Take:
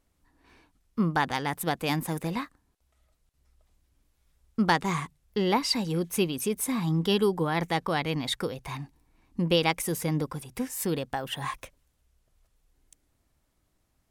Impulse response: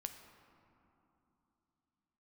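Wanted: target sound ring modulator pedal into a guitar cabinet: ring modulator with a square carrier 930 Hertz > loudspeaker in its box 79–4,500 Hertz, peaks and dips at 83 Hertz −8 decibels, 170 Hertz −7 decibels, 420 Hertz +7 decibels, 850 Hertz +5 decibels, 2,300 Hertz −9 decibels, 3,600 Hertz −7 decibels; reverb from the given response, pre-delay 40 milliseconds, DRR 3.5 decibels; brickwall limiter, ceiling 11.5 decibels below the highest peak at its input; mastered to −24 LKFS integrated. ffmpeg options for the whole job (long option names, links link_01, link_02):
-filter_complex "[0:a]alimiter=limit=-21.5dB:level=0:latency=1,asplit=2[link_01][link_02];[1:a]atrim=start_sample=2205,adelay=40[link_03];[link_02][link_03]afir=irnorm=-1:irlink=0,volume=-0.5dB[link_04];[link_01][link_04]amix=inputs=2:normalize=0,aeval=exprs='val(0)*sgn(sin(2*PI*930*n/s))':channel_layout=same,highpass=79,equalizer=frequency=83:width_type=q:width=4:gain=-8,equalizer=frequency=170:width_type=q:width=4:gain=-7,equalizer=frequency=420:width_type=q:width=4:gain=7,equalizer=frequency=850:width_type=q:width=4:gain=5,equalizer=frequency=2300:width_type=q:width=4:gain=-9,equalizer=frequency=3600:width_type=q:width=4:gain=-7,lowpass=frequency=4500:width=0.5412,lowpass=frequency=4500:width=1.3066,volume=6.5dB"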